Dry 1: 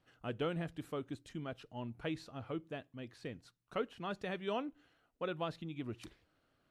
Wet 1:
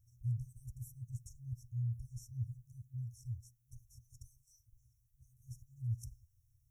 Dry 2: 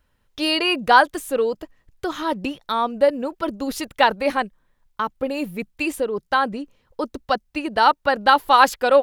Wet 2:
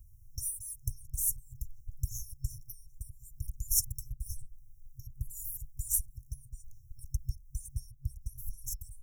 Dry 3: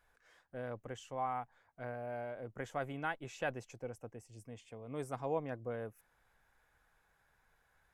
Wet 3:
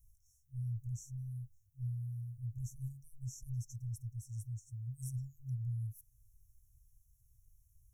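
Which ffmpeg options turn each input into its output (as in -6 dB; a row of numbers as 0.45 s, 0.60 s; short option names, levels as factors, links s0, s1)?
-filter_complex "[0:a]equalizer=f=1000:t=o:w=1:g=6,equalizer=f=2000:t=o:w=1:g=6,equalizer=f=4000:t=o:w=1:g=-10,equalizer=f=8000:t=o:w=1:g=-6,acrossover=split=250[s0][s1];[s1]acompressor=threshold=0.1:ratio=10[s2];[s0][s2]amix=inputs=2:normalize=0,afftfilt=real='re*(1-between(b*sr/4096,130,5400))':imag='im*(1-between(b*sr/4096,130,5400))':win_size=4096:overlap=0.75,volume=4.47"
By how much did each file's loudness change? -1.5 LU, -16.0 LU, -1.0 LU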